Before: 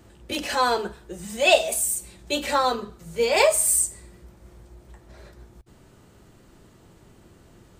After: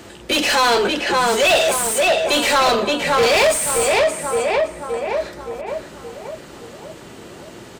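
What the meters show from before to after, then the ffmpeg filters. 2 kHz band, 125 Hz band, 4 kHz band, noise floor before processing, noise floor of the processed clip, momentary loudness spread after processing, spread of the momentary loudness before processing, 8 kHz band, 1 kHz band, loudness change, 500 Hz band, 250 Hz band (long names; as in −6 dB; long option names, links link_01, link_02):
+9.0 dB, +7.5 dB, +9.0 dB, −54 dBFS, −40 dBFS, 19 LU, 15 LU, +2.0 dB, +7.5 dB, +5.0 dB, +8.0 dB, +9.0 dB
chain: -filter_complex "[0:a]equalizer=frequency=1100:width_type=o:width=1.9:gain=-5,acrossover=split=3000[link_01][link_02];[link_02]alimiter=limit=-21.5dB:level=0:latency=1[link_03];[link_01][link_03]amix=inputs=2:normalize=0,asplit=2[link_04][link_05];[link_05]adelay=570,lowpass=frequency=2300:poles=1,volume=-5dB,asplit=2[link_06][link_07];[link_07]adelay=570,lowpass=frequency=2300:poles=1,volume=0.52,asplit=2[link_08][link_09];[link_09]adelay=570,lowpass=frequency=2300:poles=1,volume=0.52,asplit=2[link_10][link_11];[link_11]adelay=570,lowpass=frequency=2300:poles=1,volume=0.52,asplit=2[link_12][link_13];[link_13]adelay=570,lowpass=frequency=2300:poles=1,volume=0.52,asplit=2[link_14][link_15];[link_15]adelay=570,lowpass=frequency=2300:poles=1,volume=0.52,asplit=2[link_16][link_17];[link_17]adelay=570,lowpass=frequency=2300:poles=1,volume=0.52[link_18];[link_04][link_06][link_08][link_10][link_12][link_14][link_16][link_18]amix=inputs=8:normalize=0,asplit=2[link_19][link_20];[link_20]highpass=frequency=720:poles=1,volume=28dB,asoftclip=type=tanh:threshold=-7.5dB[link_21];[link_19][link_21]amix=inputs=2:normalize=0,lowpass=frequency=4200:poles=1,volume=-6dB"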